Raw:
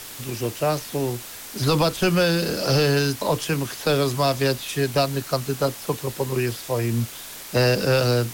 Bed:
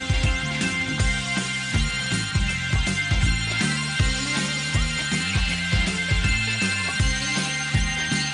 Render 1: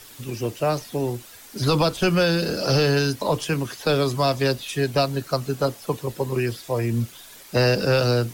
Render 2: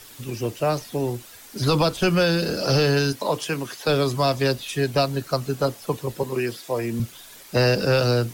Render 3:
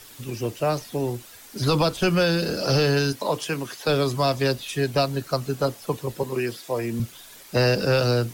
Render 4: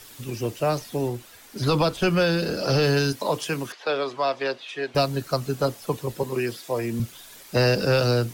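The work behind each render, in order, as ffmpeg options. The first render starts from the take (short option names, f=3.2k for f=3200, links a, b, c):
-af "afftdn=nr=9:nf=-38"
-filter_complex "[0:a]asettb=1/sr,asplit=3[a][b][c];[a]atrim=end=3.124[d];[b]atrim=start=3.12:end=3.88,asetpts=PTS-STARTPTS,afade=t=in:d=0.004:c=qsin,afade=t=out:st=0.756:d=0.004:c=qsin,highpass=f=250:p=1[e];[c]atrim=start=3.876[f];[d][e]acrossfade=d=0.004:c1=hsin:c2=qsin[g];[g][f]acrossfade=d=0.004:c1=qsin:c2=hsin,asettb=1/sr,asplit=3[h][i][j];[h]atrim=end=6.234[k];[i]atrim=start=6.23:end=7,asetpts=PTS-STARTPTS,afade=t=in:d=0.004:c=qsin,afade=t=out:st=0.766:d=0.004:c=qsin,highpass=180[l];[j]atrim=start=6.996[m];[k][l]acrossfade=d=0.004:c1=hsin:c2=qsin[n];[n][m]acrossfade=d=0.004:c1=qsin:c2=hsin"
-af "volume=-1dB"
-filter_complex "[0:a]asettb=1/sr,asplit=3[a][b][c];[a]atrim=end=1.084[d];[b]atrim=start=1.08:end=2.83,asetpts=PTS-STARTPTS,afade=t=in:d=0.004:c=qsin,afade=t=out:st=1.746:d=0.004:c=qsin,bass=f=250:g=-1,treble=f=4k:g=-4[e];[c]atrim=start=2.826[f];[d][e]acrossfade=d=0.004:c1=hsin:c2=qsin[g];[g][f]acrossfade=d=0.004:c1=qsin:c2=hsin,asettb=1/sr,asplit=3[h][i][j];[h]atrim=end=3.724[k];[i]atrim=start=3.72:end=4.95,asetpts=PTS-STARTPTS,afade=t=in:d=0.004:c=qsin,afade=t=out:st=1.226:d=0.004:c=qsin,highpass=460,lowpass=3.2k[l];[j]atrim=start=4.946[m];[k][l]acrossfade=d=0.004:c1=hsin:c2=qsin[n];[n][m]acrossfade=d=0.004:c1=qsin:c2=hsin"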